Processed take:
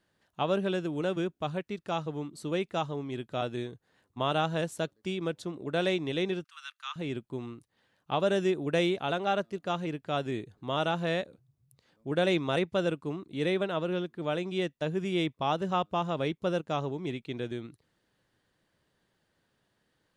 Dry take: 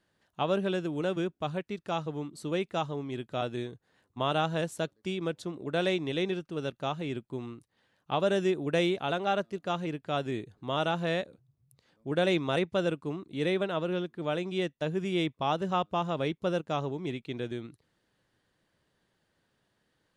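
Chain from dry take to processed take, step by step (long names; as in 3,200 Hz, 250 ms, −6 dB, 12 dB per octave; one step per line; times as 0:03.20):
0:06.44–0:06.96: Butterworth high-pass 1,100 Hz 48 dB per octave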